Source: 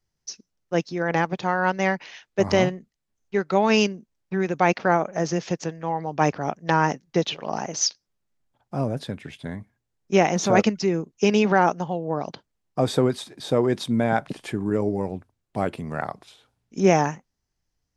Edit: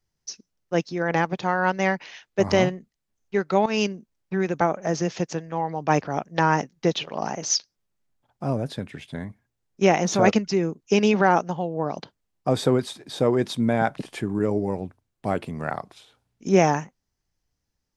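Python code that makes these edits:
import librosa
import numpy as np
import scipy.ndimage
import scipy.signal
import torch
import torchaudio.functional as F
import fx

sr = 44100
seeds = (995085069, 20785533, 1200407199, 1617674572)

y = fx.edit(x, sr, fx.fade_in_from(start_s=3.66, length_s=0.25, floor_db=-13.0),
    fx.cut(start_s=4.61, length_s=0.31), tone=tone)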